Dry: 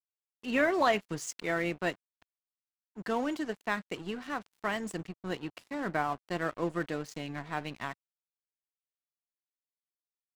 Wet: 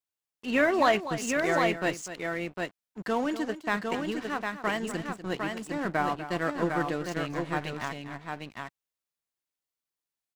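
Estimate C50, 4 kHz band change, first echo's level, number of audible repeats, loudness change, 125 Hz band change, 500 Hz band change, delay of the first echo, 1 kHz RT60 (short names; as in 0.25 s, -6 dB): none, +4.5 dB, -12.5 dB, 2, +4.0 dB, +4.5 dB, +4.5 dB, 0.246 s, none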